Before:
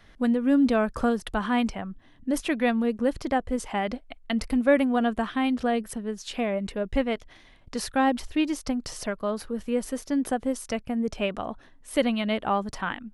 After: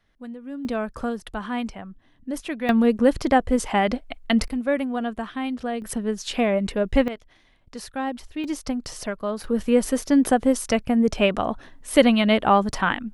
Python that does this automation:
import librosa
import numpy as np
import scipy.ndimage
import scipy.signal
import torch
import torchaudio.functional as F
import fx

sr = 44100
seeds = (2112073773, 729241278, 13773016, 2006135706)

y = fx.gain(x, sr, db=fx.steps((0.0, -13.5), (0.65, -3.5), (2.69, 7.0), (4.48, -3.0), (5.82, 6.0), (7.08, -5.5), (8.44, 1.0), (9.44, 8.0)))